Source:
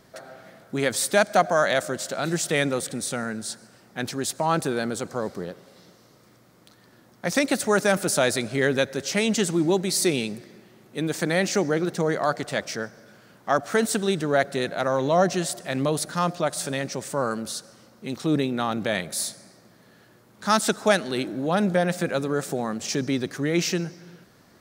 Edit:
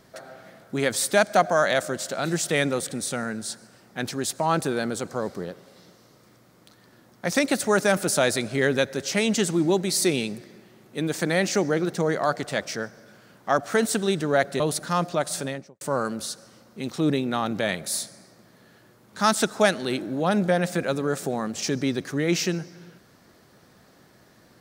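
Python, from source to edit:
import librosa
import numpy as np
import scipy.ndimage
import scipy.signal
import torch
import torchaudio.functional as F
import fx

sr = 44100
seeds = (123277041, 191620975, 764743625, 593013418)

y = fx.studio_fade_out(x, sr, start_s=16.62, length_s=0.45)
y = fx.edit(y, sr, fx.cut(start_s=14.6, length_s=1.26), tone=tone)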